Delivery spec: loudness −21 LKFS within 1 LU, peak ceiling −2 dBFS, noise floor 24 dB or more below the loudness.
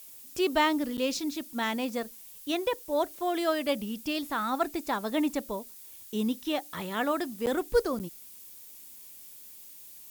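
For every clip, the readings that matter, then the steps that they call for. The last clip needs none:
number of dropouts 3; longest dropout 9.0 ms; background noise floor −49 dBFS; target noise floor −55 dBFS; integrated loudness −30.5 LKFS; sample peak −12.5 dBFS; target loudness −21.0 LKFS
→ repair the gap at 0:00.97/0:07.46/0:07.99, 9 ms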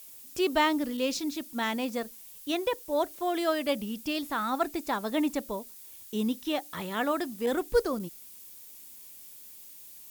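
number of dropouts 0; background noise floor −49 dBFS; target noise floor −55 dBFS
→ noise reduction from a noise print 6 dB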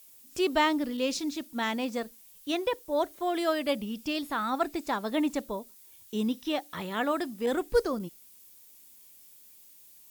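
background noise floor −55 dBFS; integrated loudness −30.5 LKFS; sample peak −12.5 dBFS; target loudness −21.0 LKFS
→ level +9.5 dB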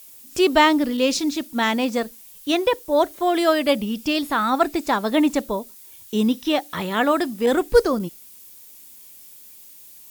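integrated loudness −21.0 LKFS; sample peak −3.0 dBFS; background noise floor −45 dBFS

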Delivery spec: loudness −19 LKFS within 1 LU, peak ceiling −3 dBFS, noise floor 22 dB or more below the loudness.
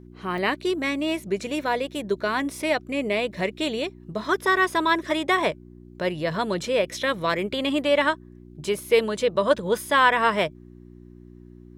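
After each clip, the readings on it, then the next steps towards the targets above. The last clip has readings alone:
number of dropouts 1; longest dropout 2.8 ms; mains hum 60 Hz; hum harmonics up to 360 Hz; level of the hum −43 dBFS; integrated loudness −24.0 LKFS; sample peak −5.0 dBFS; target loudness −19.0 LKFS
→ repair the gap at 0:00.38, 2.8 ms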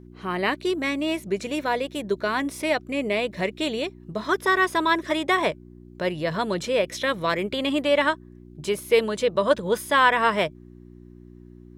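number of dropouts 0; mains hum 60 Hz; hum harmonics up to 360 Hz; level of the hum −43 dBFS
→ hum removal 60 Hz, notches 6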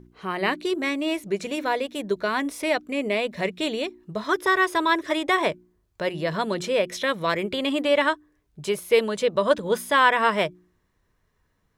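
mains hum none found; integrated loudness −24.0 LKFS; sample peak −5.0 dBFS; target loudness −19.0 LKFS
→ level +5 dB
brickwall limiter −3 dBFS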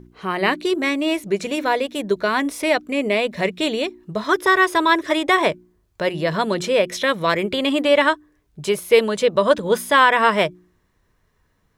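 integrated loudness −19.5 LKFS; sample peak −3.0 dBFS; background noise floor −65 dBFS

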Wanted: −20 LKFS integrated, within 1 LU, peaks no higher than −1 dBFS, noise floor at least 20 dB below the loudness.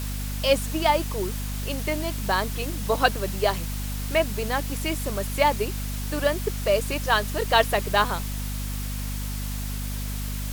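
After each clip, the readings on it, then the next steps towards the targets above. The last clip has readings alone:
mains hum 50 Hz; hum harmonics up to 250 Hz; level of the hum −28 dBFS; background noise floor −30 dBFS; target noise floor −46 dBFS; integrated loudness −26.0 LKFS; sample peak −4.5 dBFS; target loudness −20.0 LKFS
→ hum removal 50 Hz, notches 5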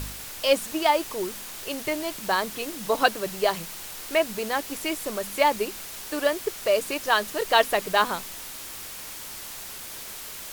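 mains hum none found; background noise floor −39 dBFS; target noise floor −47 dBFS
→ noise reduction from a noise print 8 dB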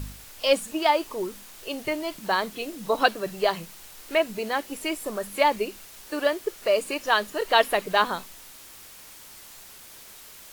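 background noise floor −47 dBFS; integrated loudness −26.0 LKFS; sample peak −4.5 dBFS; target loudness −20.0 LKFS
→ level +6 dB
brickwall limiter −1 dBFS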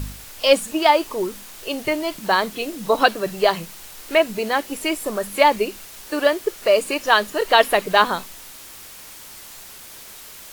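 integrated loudness −20.0 LKFS; sample peak −1.0 dBFS; background noise floor −41 dBFS

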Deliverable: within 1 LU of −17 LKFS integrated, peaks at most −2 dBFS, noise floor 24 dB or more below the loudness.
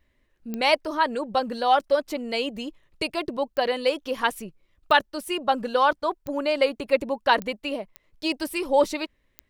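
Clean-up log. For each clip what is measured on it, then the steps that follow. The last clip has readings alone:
number of clicks 7; integrated loudness −25.0 LKFS; sample peak −5.5 dBFS; target loudness −17.0 LKFS
→ click removal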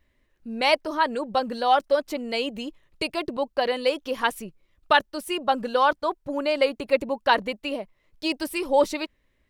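number of clicks 0; integrated loudness −25.0 LKFS; sample peak −5.5 dBFS; target loudness −17.0 LKFS
→ level +8 dB
brickwall limiter −2 dBFS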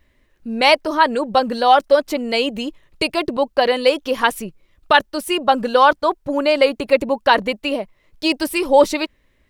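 integrated loudness −17.5 LKFS; sample peak −2.0 dBFS; background noise floor −61 dBFS

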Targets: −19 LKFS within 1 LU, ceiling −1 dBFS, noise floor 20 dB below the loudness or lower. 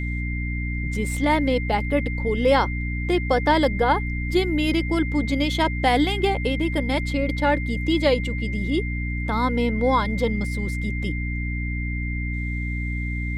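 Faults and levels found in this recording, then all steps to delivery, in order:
mains hum 60 Hz; hum harmonics up to 300 Hz; level of the hum −24 dBFS; interfering tone 2,100 Hz; level of the tone −32 dBFS; integrated loudness −23.5 LKFS; sample peak −6.5 dBFS; target loudness −19.0 LKFS
→ mains-hum notches 60/120/180/240/300 Hz
notch filter 2,100 Hz, Q 30
level +4.5 dB

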